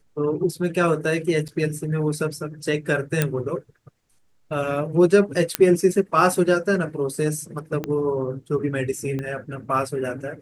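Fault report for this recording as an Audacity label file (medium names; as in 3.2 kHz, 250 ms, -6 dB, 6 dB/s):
1.480000	1.490000	dropout 6.4 ms
3.220000	3.220000	pop -5 dBFS
5.550000	5.550000	pop -1 dBFS
7.840000	7.840000	pop -14 dBFS
9.190000	9.190000	pop -18 dBFS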